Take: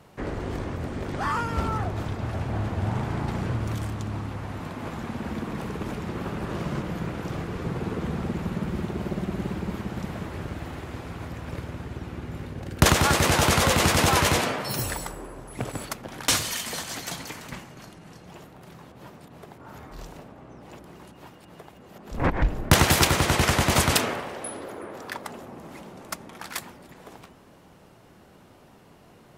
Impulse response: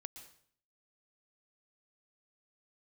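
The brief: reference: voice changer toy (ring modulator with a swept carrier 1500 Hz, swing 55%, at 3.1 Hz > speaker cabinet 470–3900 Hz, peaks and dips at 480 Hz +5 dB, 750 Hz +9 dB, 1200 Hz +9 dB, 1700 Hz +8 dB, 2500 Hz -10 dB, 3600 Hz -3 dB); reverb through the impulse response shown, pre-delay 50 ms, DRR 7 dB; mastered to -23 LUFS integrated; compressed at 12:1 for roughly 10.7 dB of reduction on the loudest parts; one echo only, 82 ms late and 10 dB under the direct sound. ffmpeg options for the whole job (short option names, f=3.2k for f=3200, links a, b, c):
-filter_complex "[0:a]acompressor=threshold=-25dB:ratio=12,aecho=1:1:82:0.316,asplit=2[a][b];[1:a]atrim=start_sample=2205,adelay=50[c];[b][c]afir=irnorm=-1:irlink=0,volume=-2dB[d];[a][d]amix=inputs=2:normalize=0,aeval=exprs='val(0)*sin(2*PI*1500*n/s+1500*0.55/3.1*sin(2*PI*3.1*n/s))':c=same,highpass=470,equalizer=f=480:t=q:w=4:g=5,equalizer=f=750:t=q:w=4:g=9,equalizer=f=1.2k:t=q:w=4:g=9,equalizer=f=1.7k:t=q:w=4:g=8,equalizer=f=2.5k:t=q:w=4:g=-10,equalizer=f=3.6k:t=q:w=4:g=-3,lowpass=f=3.9k:w=0.5412,lowpass=f=3.9k:w=1.3066,volume=5.5dB"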